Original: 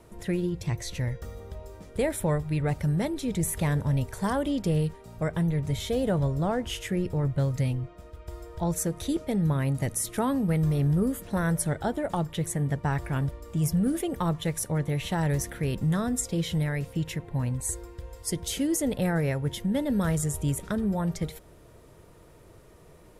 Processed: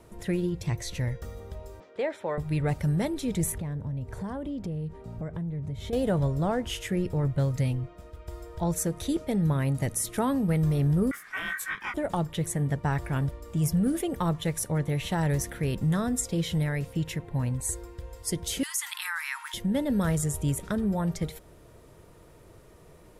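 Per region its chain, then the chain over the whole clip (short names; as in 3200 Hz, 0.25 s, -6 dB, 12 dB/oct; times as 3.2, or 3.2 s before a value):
1.8–2.38 HPF 430 Hz + air absorption 180 m
3.52–5.93 HPF 100 Hz 6 dB/oct + tilt -3 dB/oct + compressor 4:1, threshold -33 dBFS
11.11–11.94 ring modulator 1700 Hz + detuned doubles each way 52 cents
18.63–19.54 steep high-pass 970 Hz 72 dB/oct + fast leveller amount 50%
whole clip: dry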